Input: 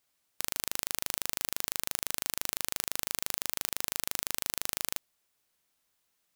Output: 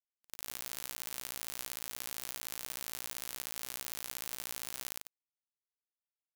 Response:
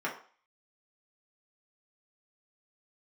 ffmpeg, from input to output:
-af "afftfilt=real='re':imag='-im':win_size=8192:overlap=0.75,areverse,acompressor=mode=upward:threshold=-58dB:ratio=2.5,areverse,acrusher=bits=8:mix=0:aa=0.000001,volume=-3dB"

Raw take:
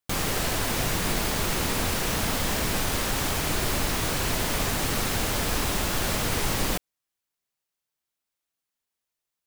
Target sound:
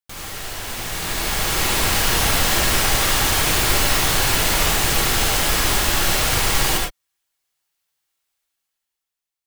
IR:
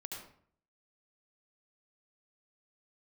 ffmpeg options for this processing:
-filter_complex "[0:a]equalizer=frequency=220:width=0.36:gain=-7.5,dynaudnorm=framelen=280:gausssize=9:maxgain=16.5dB[link_01];[1:a]atrim=start_sample=2205,afade=type=out:start_time=0.17:duration=0.01,atrim=end_sample=7938[link_02];[link_01][link_02]afir=irnorm=-1:irlink=0"

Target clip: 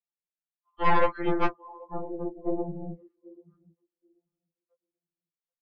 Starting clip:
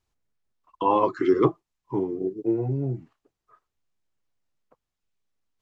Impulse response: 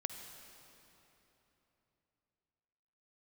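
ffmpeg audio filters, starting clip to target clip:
-filter_complex "[0:a]afftfilt=real='hypot(re,im)*cos(2*PI*random(0))':imag='hypot(re,im)*sin(2*PI*random(1))':win_size=512:overlap=0.75,aresample=11025,volume=20.5dB,asoftclip=hard,volume=-20.5dB,aresample=44100,aemphasis=mode=production:type=riaa,acontrast=78,asplit=2[link_01][link_02];[link_02]adelay=785,lowpass=frequency=980:poles=1,volume=-18dB,asplit=2[link_03][link_04];[link_04]adelay=785,lowpass=frequency=980:poles=1,volume=0.32,asplit=2[link_05][link_06];[link_06]adelay=785,lowpass=frequency=980:poles=1,volume=0.32[link_07];[link_01][link_03][link_05][link_07]amix=inputs=4:normalize=0,aeval=exprs='0.335*(cos(1*acos(clip(val(0)/0.335,-1,1)))-cos(1*PI/2))+0.00335*(cos(3*acos(clip(val(0)/0.335,-1,1)))-cos(3*PI/2))+0.0944*(cos(4*acos(clip(val(0)/0.335,-1,1)))-cos(4*PI/2))+0.00237*(cos(7*acos(clip(val(0)/0.335,-1,1)))-cos(7*PI/2))':channel_layout=same,afftdn=noise_reduction=21:noise_floor=-40,lowpass=2800,afftfilt=real='re*2.83*eq(mod(b,8),0)':imag='im*2.83*eq(mod(b,8),0)':win_size=2048:overlap=0.75"

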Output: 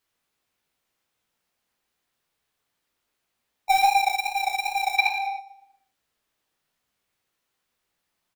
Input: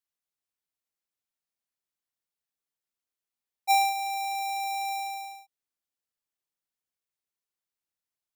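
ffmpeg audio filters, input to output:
ffmpeg -i in.wav -filter_complex "[0:a]aeval=exprs='val(0)+0.5*0.0188*sgn(val(0))':channel_layout=same,agate=range=-35dB:threshold=-34dB:ratio=16:detection=peak,flanger=delay=16:depth=5.1:speed=2.5,asplit=2[link_01][link_02];[link_02]adelay=118,lowpass=frequency=3700:poles=1,volume=-7dB,asplit=2[link_03][link_04];[link_04]adelay=118,lowpass=frequency=3700:poles=1,volume=0.44,asplit=2[link_05][link_06];[link_06]adelay=118,lowpass=frequency=3700:poles=1,volume=0.44,asplit=2[link_07][link_08];[link_08]adelay=118,lowpass=frequency=3700:poles=1,volume=0.44,asplit=2[link_09][link_10];[link_10]adelay=118,lowpass=frequency=3700:poles=1,volume=0.44[link_11];[link_03][link_05][link_07][link_09][link_11]amix=inputs=5:normalize=0[link_12];[link_01][link_12]amix=inputs=2:normalize=0,aeval=exprs='0.126*(cos(1*acos(clip(val(0)/0.126,-1,1)))-cos(1*PI/2))+0.00398*(cos(2*acos(clip(val(0)/0.126,-1,1)))-cos(2*PI/2))+0.0355*(cos(7*acos(clip(val(0)/0.126,-1,1)))-cos(7*PI/2))':channel_layout=same,asplit=3[link_13][link_14][link_15];[link_13]afade=type=out:start_time=4.97:duration=0.02[link_16];[link_14]equalizer=frequency=1000:width_type=o:width=1:gain=10,equalizer=frequency=2000:width_type=o:width=1:gain=10,equalizer=frequency=4000:width_type=o:width=1:gain=7,equalizer=frequency=8000:width_type=o:width=1:gain=-5,afade=type=in:start_time=4.97:duration=0.02,afade=type=out:start_time=5.38:duration=0.02[link_17];[link_15]afade=type=in:start_time=5.38:duration=0.02[link_18];[link_16][link_17][link_18]amix=inputs=3:normalize=0,acrossover=split=4100[link_19][link_20];[link_19]acontrast=62[link_21];[link_21][link_20]amix=inputs=2:normalize=0" out.wav

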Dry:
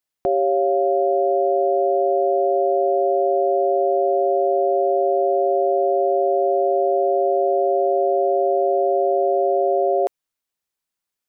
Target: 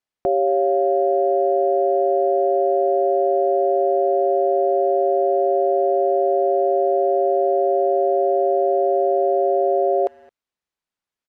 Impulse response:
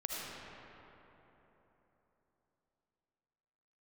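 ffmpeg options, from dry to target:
-filter_complex "[0:a]aemphasis=mode=reproduction:type=50fm,asplit=2[link_01][link_02];[link_02]adelay=220,highpass=300,lowpass=3400,asoftclip=type=hard:threshold=-20dB,volume=-26dB[link_03];[link_01][link_03]amix=inputs=2:normalize=0"

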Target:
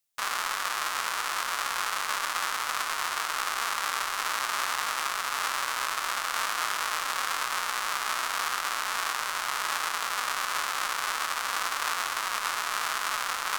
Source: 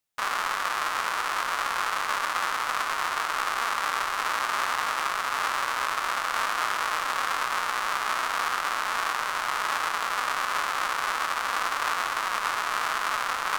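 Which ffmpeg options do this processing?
ffmpeg -i in.wav -af "highshelf=frequency=3000:gain=10,volume=-5dB" out.wav

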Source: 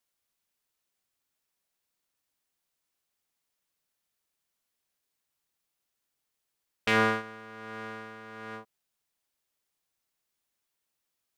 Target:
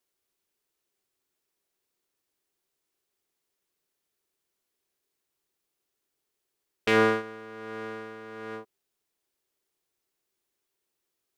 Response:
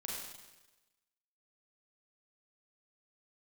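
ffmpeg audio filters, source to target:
-af "equalizer=frequency=380:width_type=o:width=0.55:gain=12"

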